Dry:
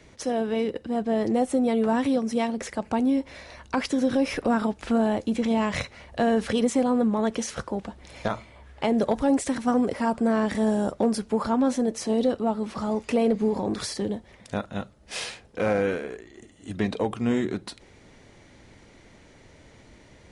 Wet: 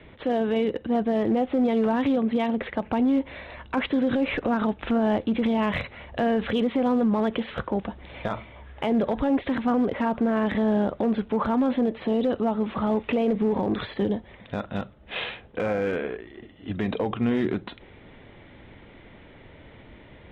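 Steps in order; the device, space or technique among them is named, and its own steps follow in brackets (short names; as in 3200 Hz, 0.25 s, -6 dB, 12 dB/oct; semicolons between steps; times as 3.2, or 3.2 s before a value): steep low-pass 3700 Hz 96 dB/oct; limiter into clipper (limiter -20 dBFS, peak gain reduction 7.5 dB; hard clip -21 dBFS, distortion -30 dB); gain +4 dB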